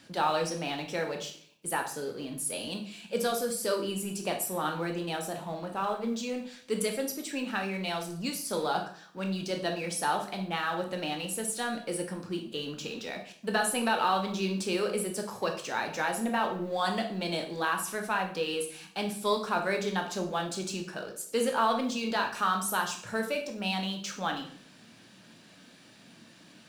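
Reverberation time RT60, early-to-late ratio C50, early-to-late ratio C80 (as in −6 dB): 0.55 s, 8.0 dB, 12.5 dB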